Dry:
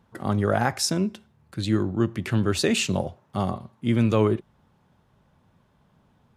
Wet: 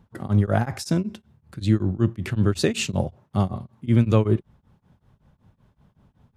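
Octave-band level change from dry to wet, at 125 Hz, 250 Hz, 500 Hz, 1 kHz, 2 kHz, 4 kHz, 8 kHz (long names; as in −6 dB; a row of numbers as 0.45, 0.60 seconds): +4.5, +1.0, −1.0, −3.0, −3.0, −3.5, −4.5 decibels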